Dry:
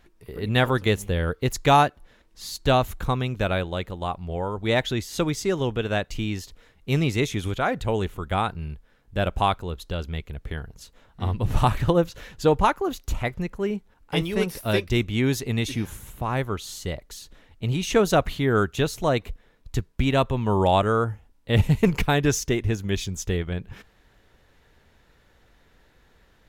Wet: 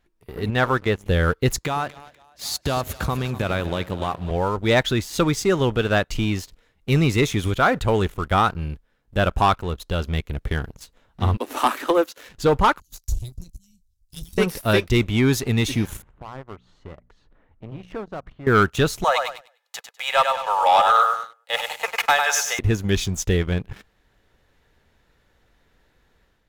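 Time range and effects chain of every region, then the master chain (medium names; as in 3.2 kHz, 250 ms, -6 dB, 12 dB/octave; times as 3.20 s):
0.50–1.06 s: low-pass 1.3 kHz 6 dB/octave + bass shelf 500 Hz -7 dB
1.58–4.31 s: high-pass 52 Hz 24 dB/octave + compression 12:1, threshold -27 dBFS + two-band feedback delay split 530 Hz, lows 99 ms, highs 246 ms, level -13 dB
11.37–12.29 s: steep high-pass 240 Hz 96 dB/octave + treble shelf 8.8 kHz +8 dB
12.80–14.38 s: inverse Chebyshev band-stop 370–1500 Hz, stop band 70 dB + doubling 23 ms -12 dB
16.02–18.47 s: Chebyshev low-pass 1.3 kHz + hum notches 60/120/180/240 Hz + compression 2:1, threshold -49 dBFS
19.04–22.59 s: steep high-pass 540 Hz 72 dB/octave + comb 2.4 ms, depth 47% + feedback delay 100 ms, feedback 37%, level -6 dB
whole clip: dynamic bell 1.3 kHz, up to +6 dB, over -41 dBFS, Q 2.2; waveshaping leveller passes 2; level rider gain up to 7 dB; trim -6.5 dB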